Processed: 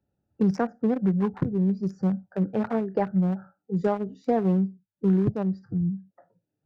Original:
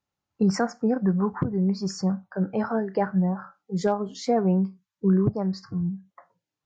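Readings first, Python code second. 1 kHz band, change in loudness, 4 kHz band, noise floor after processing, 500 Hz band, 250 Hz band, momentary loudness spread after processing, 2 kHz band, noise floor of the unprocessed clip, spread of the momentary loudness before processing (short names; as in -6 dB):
-2.5 dB, -0.5 dB, under -10 dB, -84 dBFS, -1.0 dB, 0.0 dB, 6 LU, -4.0 dB, under -85 dBFS, 7 LU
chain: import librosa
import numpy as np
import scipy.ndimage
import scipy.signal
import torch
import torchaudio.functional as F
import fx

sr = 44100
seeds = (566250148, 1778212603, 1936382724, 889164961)

y = fx.wiener(x, sr, points=41)
y = fx.band_squash(y, sr, depth_pct=40)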